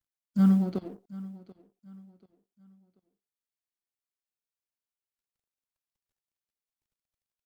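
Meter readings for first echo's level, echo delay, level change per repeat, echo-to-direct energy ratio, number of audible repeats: -19.0 dB, 0.736 s, -9.5 dB, -18.5 dB, 2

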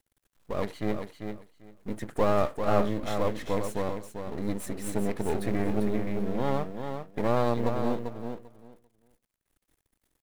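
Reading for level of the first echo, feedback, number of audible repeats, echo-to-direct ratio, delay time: -7.0 dB, 17%, 2, -7.0 dB, 0.394 s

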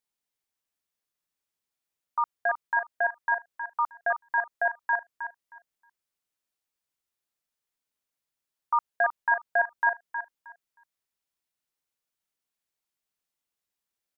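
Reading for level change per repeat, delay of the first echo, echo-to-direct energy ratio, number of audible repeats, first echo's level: -14.5 dB, 0.314 s, -9.0 dB, 2, -9.0 dB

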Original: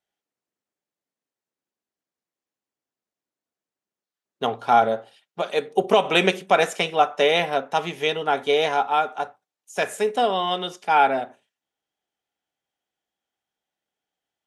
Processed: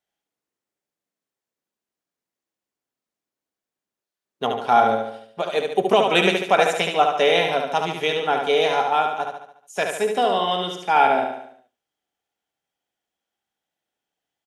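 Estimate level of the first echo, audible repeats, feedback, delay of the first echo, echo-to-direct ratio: -5.0 dB, 5, 50%, 72 ms, -4.0 dB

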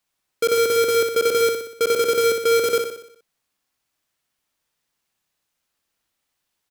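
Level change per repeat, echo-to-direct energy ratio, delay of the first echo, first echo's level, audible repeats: -5.5 dB, -4.5 dB, 61 ms, -6.0 dB, 6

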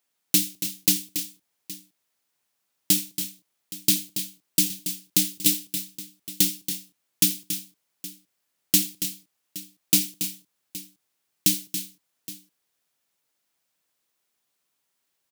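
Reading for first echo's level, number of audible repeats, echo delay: -19.5 dB, 3, 82 ms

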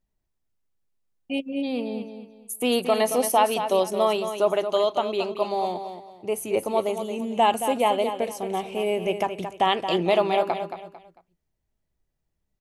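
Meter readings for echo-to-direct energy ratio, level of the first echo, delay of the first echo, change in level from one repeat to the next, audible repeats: -8.5 dB, -9.0 dB, 0.224 s, -10.5 dB, 3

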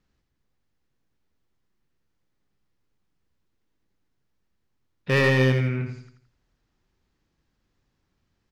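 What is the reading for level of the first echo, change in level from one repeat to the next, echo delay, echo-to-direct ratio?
-7.0 dB, -8.0 dB, 84 ms, -6.0 dB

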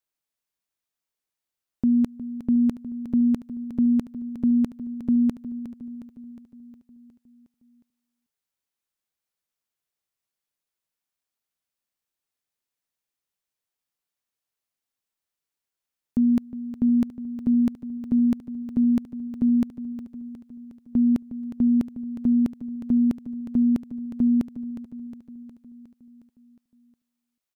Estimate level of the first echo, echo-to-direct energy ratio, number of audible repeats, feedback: -12.5 dB, -10.5 dB, 5, 59%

